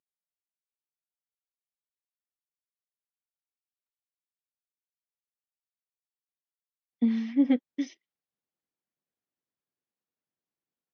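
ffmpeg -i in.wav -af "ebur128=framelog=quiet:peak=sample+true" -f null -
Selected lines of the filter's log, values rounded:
Integrated loudness:
  I:         -28.0 LUFS
  Threshold: -38.4 LUFS
Loudness range:
  LRA:         6.4 LU
  Threshold: -53.2 LUFS
  LRA low:   -38.4 LUFS
  LRA high:  -32.0 LUFS
Sample peak:
  Peak:      -13.8 dBFS
True peak:
  Peak:      -13.8 dBFS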